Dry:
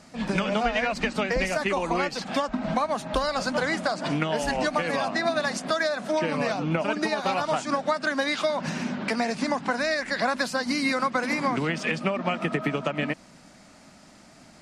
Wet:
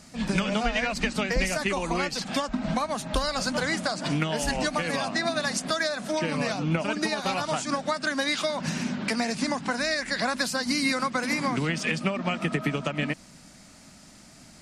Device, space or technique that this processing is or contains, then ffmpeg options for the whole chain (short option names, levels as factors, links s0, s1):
smiley-face EQ: -af "lowshelf=f=160:g=5.5,equalizer=f=660:t=o:w=2.5:g=-4,highshelf=f=5600:g=8.5"